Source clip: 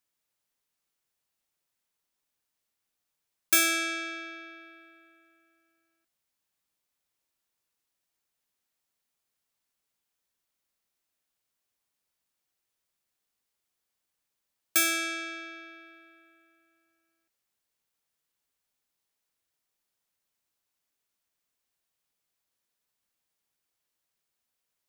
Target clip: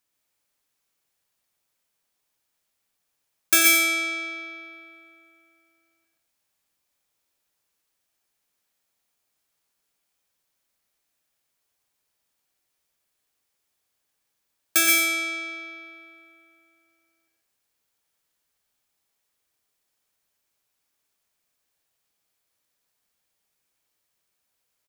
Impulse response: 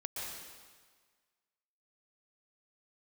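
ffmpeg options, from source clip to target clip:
-filter_complex "[0:a]aecho=1:1:89:0.335[link_01];[1:a]atrim=start_sample=2205,atrim=end_sample=6174[link_02];[link_01][link_02]afir=irnorm=-1:irlink=0,volume=8dB"

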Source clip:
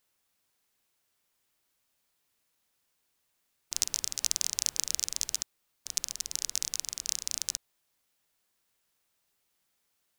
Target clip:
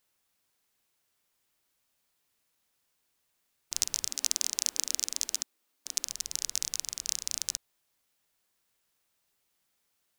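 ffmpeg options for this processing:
ffmpeg -i in.wav -filter_complex "[0:a]asettb=1/sr,asplit=3[link_01][link_02][link_03];[link_01]atrim=end=4.094[link_04];[link_02]atrim=start=4.09:end=6.07,asetpts=PTS-STARTPTS,afade=type=in:duration=0.004:curve=qsin,afade=type=out:start_time=1.976:duration=0.004:curve=qsin,lowshelf=frequency=190:width_type=q:width=3:gain=-9[link_05];[link_03]atrim=start=6.066[link_06];[link_04][link_05]acrossfade=duration=0.004:curve1=hsin:curve2=qsin[link_07];[link_07][link_06]acrossfade=duration=0.004:curve1=qsin:curve2=hsin" out.wav

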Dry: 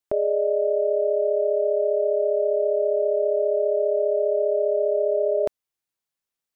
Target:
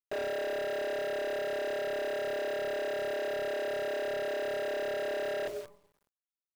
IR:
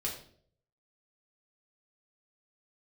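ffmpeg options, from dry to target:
-filter_complex "[0:a]asplit=2[link_01][link_02];[1:a]atrim=start_sample=2205,asetrate=34839,aresample=44100[link_03];[link_02][link_03]afir=irnorm=-1:irlink=0,volume=-10.5dB[link_04];[link_01][link_04]amix=inputs=2:normalize=0,acrusher=bits=8:dc=4:mix=0:aa=0.000001,volume=29dB,asoftclip=hard,volume=-29dB,volume=-3.5dB"

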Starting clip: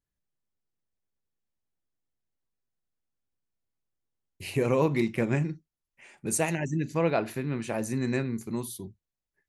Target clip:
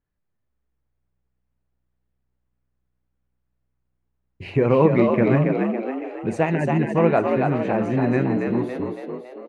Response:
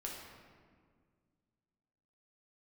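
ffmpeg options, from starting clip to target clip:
-filter_complex "[0:a]lowpass=1900,asplit=8[link_01][link_02][link_03][link_04][link_05][link_06][link_07][link_08];[link_02]adelay=279,afreqshift=62,volume=-4.5dB[link_09];[link_03]adelay=558,afreqshift=124,volume=-10.2dB[link_10];[link_04]adelay=837,afreqshift=186,volume=-15.9dB[link_11];[link_05]adelay=1116,afreqshift=248,volume=-21.5dB[link_12];[link_06]adelay=1395,afreqshift=310,volume=-27.2dB[link_13];[link_07]adelay=1674,afreqshift=372,volume=-32.9dB[link_14];[link_08]adelay=1953,afreqshift=434,volume=-38.6dB[link_15];[link_01][link_09][link_10][link_11][link_12][link_13][link_14][link_15]amix=inputs=8:normalize=0,volume=7.5dB"

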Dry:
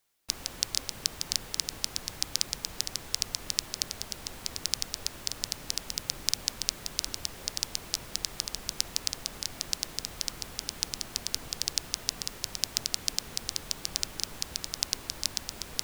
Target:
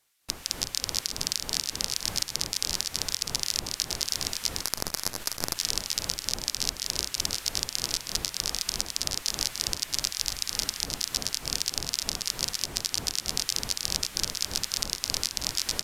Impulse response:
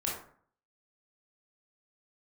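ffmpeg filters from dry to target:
-filter_complex "[0:a]asettb=1/sr,asplit=3[link_01][link_02][link_03];[link_01]atrim=end=9.904[link_04];[link_02]atrim=start=9.9:end=10.43,asetpts=PTS-STARTPTS,afade=type=in:duration=0.004:curve=qsin,afade=type=out:start_time=0.526:duration=0.004:curve=qsin,equalizer=frequency=300:width=0.54:gain=-12[link_05];[link_03]atrim=start=10.426[link_06];[link_04][link_05]acrossfade=duration=0.004:curve1=hsin:curve2=qsin[link_07];[link_07][link_06]acrossfade=duration=0.004:curve1=qsin:curve2=hsin,asplit=2[link_08][link_09];[link_09]aecho=0:1:211|317|339|864:0.631|0.299|0.422|0.376[link_10];[link_08][link_10]amix=inputs=2:normalize=0,asettb=1/sr,asplit=3[link_11][link_12][link_13];[link_11]atrim=end=4.634[link_14];[link_12]atrim=start=4.63:end=5.57,asetpts=PTS-STARTPTS,afade=type=in:duration=0.004:curve=qsin,afade=type=out:start_time=0.936:duration=0.004:curve=qsin,aeval=exprs='max(val(0),0)':channel_layout=same[link_15];[link_13]atrim=start=5.566[link_16];[link_14][link_15]acrossfade=duration=0.004:curve1=hsin:curve2=qsin[link_17];[link_17][link_16]acrossfade=duration=0.004:curve1=qsin:curve2=hsin,acrossover=split=1200[link_18][link_19];[link_18]tremolo=f=3.3:d=0.82[link_20];[link_19]alimiter=limit=-10dB:level=0:latency=1:release=421[link_21];[link_20][link_21]amix=inputs=2:normalize=0,aresample=32000,aresample=44100,volume=5.5dB"

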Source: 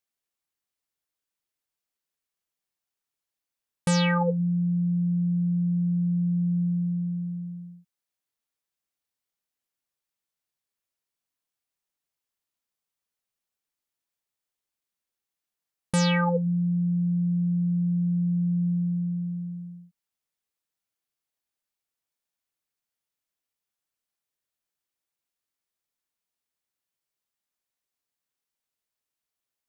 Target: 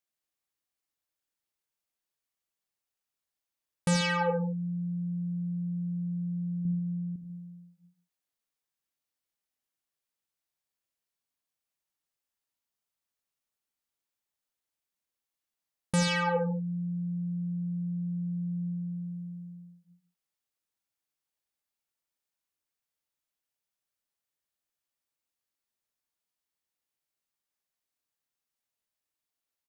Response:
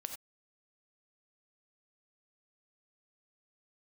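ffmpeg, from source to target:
-filter_complex "[0:a]asettb=1/sr,asplit=3[link_01][link_02][link_03];[link_01]atrim=end=6.654[link_04];[link_02]atrim=start=6.65:end=7.16,asetpts=PTS-STARTPTS,afade=type=in:duration=0.004:curve=qsin,afade=type=out:start_time=0.506:duration=0.004:curve=qsin,tiltshelf=frequency=1400:gain=3.5[link_05];[link_03]atrim=start=7.156[link_06];[link_04][link_05]acrossfade=duration=0.004:curve1=hsin:curve2=qsin[link_07];[link_07][link_06]acrossfade=duration=0.004:curve1=qsin:curve2=hsin,asplit=2[link_08][link_09];[link_09]adelay=139.9,volume=-13dB,highshelf=frequency=4000:gain=-3.15[link_10];[link_08][link_10]amix=inputs=2:normalize=0[link_11];[1:a]atrim=start_sample=2205[link_12];[link_11][link_12]afir=irnorm=-1:irlink=0"

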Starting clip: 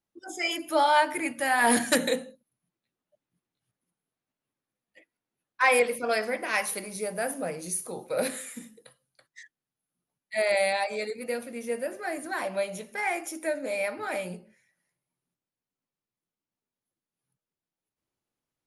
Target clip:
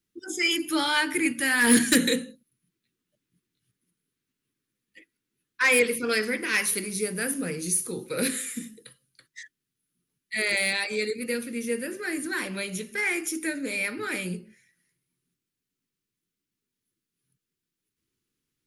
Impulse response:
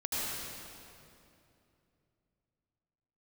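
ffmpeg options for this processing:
-filter_complex "[0:a]acrossover=split=1300[link_01][link_02];[link_01]asuperstop=centerf=1000:order=8:qfactor=0.55[link_03];[link_02]asoftclip=type=tanh:threshold=-20.5dB[link_04];[link_03][link_04]amix=inputs=2:normalize=0,volume=7dB"

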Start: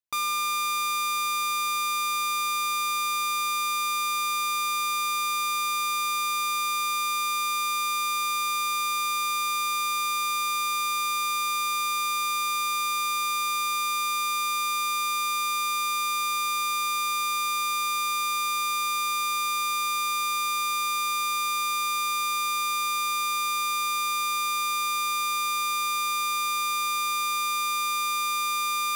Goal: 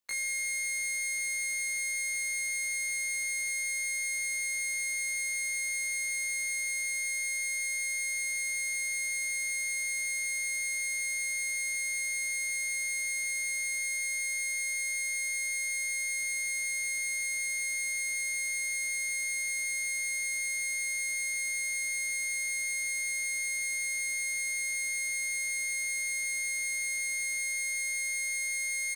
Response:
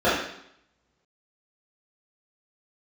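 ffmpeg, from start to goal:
-filter_complex "[0:a]acrossover=split=6200[link_01][link_02];[link_02]acompressor=threshold=-52dB:ratio=4:attack=1:release=60[link_03];[link_01][link_03]amix=inputs=2:normalize=0,equalizer=frequency=83:width=6.7:gain=-13,acrossover=split=250|3000[link_04][link_05][link_06];[link_05]acompressor=threshold=-39dB:ratio=2.5[link_07];[link_04][link_07][link_06]amix=inputs=3:normalize=0,alimiter=level_in=10.5dB:limit=-24dB:level=0:latency=1,volume=-10.5dB,asetrate=78577,aresample=44100,atempo=0.561231,asplit=2[link_08][link_09];[link_09]adelay=20,volume=-4dB[link_10];[link_08][link_10]amix=inputs=2:normalize=0,volume=8dB"

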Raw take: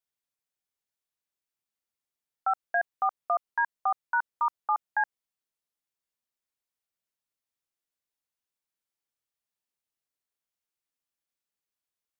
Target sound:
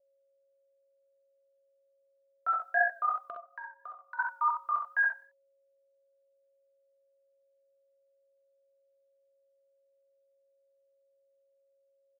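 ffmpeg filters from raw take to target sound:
ffmpeg -i in.wav -filter_complex "[0:a]asuperstop=centerf=820:order=12:qfactor=5,agate=range=-33dB:threshold=-51dB:ratio=3:detection=peak,highpass=110,asplit=2[link_01][link_02];[link_02]aecho=0:1:95|190:0.075|0.0225[link_03];[link_01][link_03]amix=inputs=2:normalize=0,flanger=delay=19.5:depth=4.5:speed=2.8,asettb=1/sr,asplit=3[link_04][link_05][link_06];[link_04]atrim=end=3.234[link_07];[link_05]atrim=start=3.23:end=4.19,asetpts=PTS-STARTPTS,afade=type=in:duration=0.004:curve=qsin,afade=type=out:start_time=0.956:duration=0.004:curve=qsin,acompressor=threshold=-43dB:ratio=16[link_08];[link_06]atrim=start=4.186[link_09];[link_07][link_08]acrossfade=duration=0.004:curve1=hsin:curve2=qsin[link_10];[link_10][link_09]acrossfade=duration=0.004:curve1=qsin:curve2=hsin,asplit=2[link_11][link_12];[link_12]aecho=0:1:47|63:0.316|0.562[link_13];[link_11][link_13]amix=inputs=2:normalize=0,aeval=exprs='val(0)+0.000355*sin(2*PI*550*n/s)':channel_layout=same,adynamicequalizer=threshold=0.00794:dfrequency=1500:dqfactor=0.7:tfrequency=1500:tqfactor=0.7:attack=5:release=100:ratio=0.375:range=3.5:mode=boostabove:tftype=highshelf" out.wav

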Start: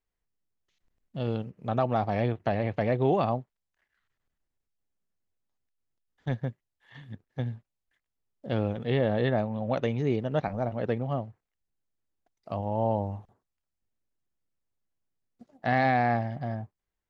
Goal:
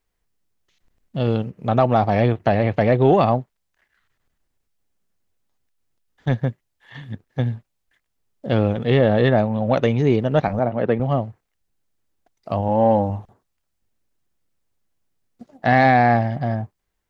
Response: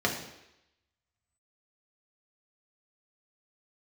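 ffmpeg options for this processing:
-filter_complex "[0:a]asettb=1/sr,asplit=3[link_01][link_02][link_03];[link_01]atrim=end=12.684[link_04];[link_02]atrim=start=12.68:end=13.1,asetpts=PTS-STARTPTS,afade=type=in:duration=0.004:curve=qsin,afade=type=out:start_time=0.416:duration=0.004:curve=qsin,aecho=1:1:3.8:0.54,atrim=end_sample=18522[link_05];[link_03]atrim=start=13.096[link_06];[link_04][link_05]acrossfade=duration=0.004:curve1=hsin:curve2=qsin[link_07];[link_07][link_06]acrossfade=duration=0.004:curve1=qsin:curve2=hsin,asplit=2[link_08][link_09];[link_09]asoftclip=type=tanh:threshold=-19.5dB,volume=-9dB[link_10];[link_08][link_10]amix=inputs=2:normalize=0,asettb=1/sr,asplit=3[link_11][link_12][link_13];[link_11]atrim=end=10.594[link_14];[link_12]atrim=start=10.59:end=11,asetpts=PTS-STARTPTS,afade=type=in:duration=0.004:curve=qsin,afade=type=out:start_time=0.406:duration=0.004:curve=qsin,highpass=130,lowpass=2800[link_15];[link_13]atrim=start=10.996[link_16];[link_14][link_15]acrossfade=duration=0.004:curve1=hsin:curve2=qsin[link_17];[link_17][link_16]acrossfade=duration=0.004:curve1=qsin:curve2=hsin,volume=7.5dB"

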